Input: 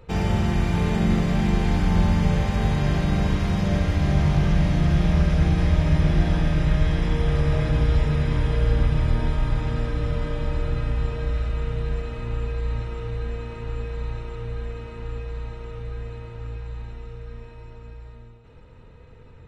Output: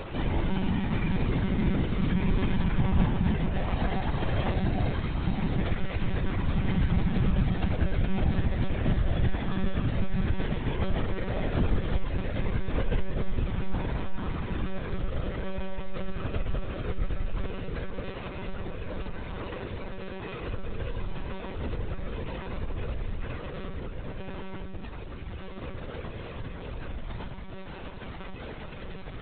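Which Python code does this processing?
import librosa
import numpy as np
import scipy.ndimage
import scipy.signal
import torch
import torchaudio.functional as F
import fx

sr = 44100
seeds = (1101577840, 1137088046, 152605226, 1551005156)

y = x + 0.5 * 10.0 ** (-27.0 / 20.0) * np.sign(x)
y = fx.stretch_vocoder_free(y, sr, factor=1.5)
y = fx.lpc_monotone(y, sr, seeds[0], pitch_hz=190.0, order=16)
y = F.gain(torch.from_numpy(y), -4.0).numpy()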